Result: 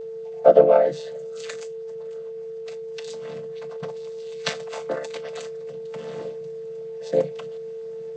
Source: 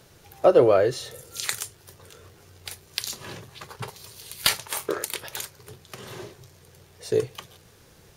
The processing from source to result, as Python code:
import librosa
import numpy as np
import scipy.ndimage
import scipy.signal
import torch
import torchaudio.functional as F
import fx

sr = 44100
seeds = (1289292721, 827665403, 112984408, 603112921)

p1 = fx.chord_vocoder(x, sr, chord='minor triad', root=50)
p2 = fx.peak_eq(p1, sr, hz=1100.0, db=-4.0, octaves=1.3)
p3 = fx.rider(p2, sr, range_db=3, speed_s=2.0)
p4 = p2 + (p3 * 10.0 ** (0.0 / 20.0))
p5 = fx.low_shelf_res(p4, sr, hz=420.0, db=-6.0, q=3.0)
p6 = p5 + 10.0 ** (-29.0 / 20.0) * np.sin(2.0 * np.pi * 450.0 * np.arange(len(p5)) / sr)
y = p6 * 10.0 ** (-2.5 / 20.0)